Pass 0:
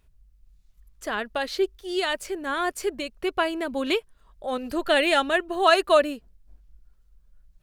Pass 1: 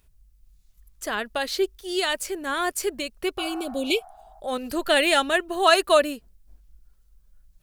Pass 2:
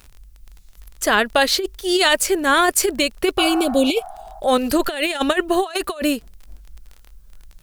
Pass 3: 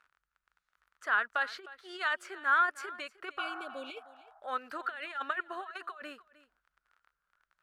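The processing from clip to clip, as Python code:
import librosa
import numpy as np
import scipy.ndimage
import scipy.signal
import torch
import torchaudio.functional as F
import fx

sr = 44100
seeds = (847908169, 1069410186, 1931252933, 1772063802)

y1 = fx.spec_repair(x, sr, seeds[0], start_s=3.41, length_s=0.96, low_hz=640.0, high_hz=2200.0, source='both')
y1 = fx.high_shelf(y1, sr, hz=5100.0, db=10.0)
y2 = fx.dmg_crackle(y1, sr, seeds[1], per_s=25.0, level_db=-42.0)
y2 = fx.over_compress(y2, sr, threshold_db=-25.0, ratio=-0.5)
y2 = y2 * 10.0 ** (8.5 / 20.0)
y3 = fx.bandpass_q(y2, sr, hz=1400.0, q=4.1)
y3 = y3 + 10.0 ** (-18.5 / 20.0) * np.pad(y3, (int(308 * sr / 1000.0), 0))[:len(y3)]
y3 = y3 * 10.0 ** (-5.5 / 20.0)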